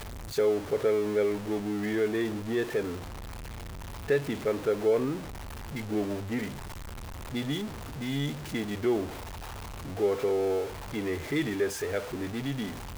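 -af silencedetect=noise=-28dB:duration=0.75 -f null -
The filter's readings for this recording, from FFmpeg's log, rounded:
silence_start: 2.90
silence_end: 4.10 | silence_duration: 1.20
silence_start: 6.45
silence_end: 7.35 | silence_duration: 0.90
silence_start: 9.04
silence_end: 10.00 | silence_duration: 0.96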